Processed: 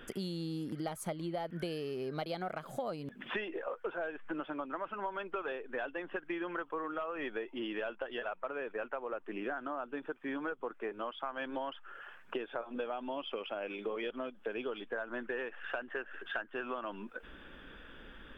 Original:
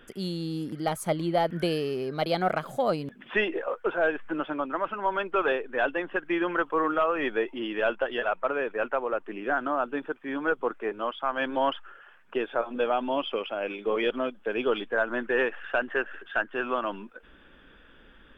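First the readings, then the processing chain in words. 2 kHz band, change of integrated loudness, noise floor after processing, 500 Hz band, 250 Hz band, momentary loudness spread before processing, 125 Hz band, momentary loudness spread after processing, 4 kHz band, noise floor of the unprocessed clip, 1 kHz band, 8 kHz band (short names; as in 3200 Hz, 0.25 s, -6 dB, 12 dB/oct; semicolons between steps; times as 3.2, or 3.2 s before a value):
-11.0 dB, -11.0 dB, -56 dBFS, -11.0 dB, -9.0 dB, 6 LU, -8.5 dB, 4 LU, -9.5 dB, -55 dBFS, -11.5 dB, n/a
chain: compressor 8:1, threshold -38 dBFS, peak gain reduction 17.5 dB; gain +2.5 dB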